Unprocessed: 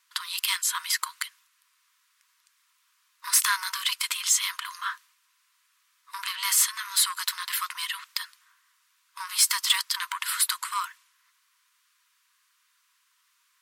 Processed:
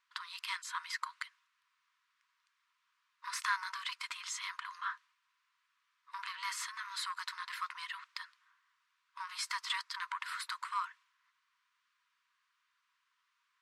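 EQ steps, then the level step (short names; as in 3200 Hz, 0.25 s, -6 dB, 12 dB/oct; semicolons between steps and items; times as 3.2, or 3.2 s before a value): dynamic EQ 3100 Hz, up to -5 dB, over -43 dBFS, Q 3.1; tape spacing loss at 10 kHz 23 dB; -3.5 dB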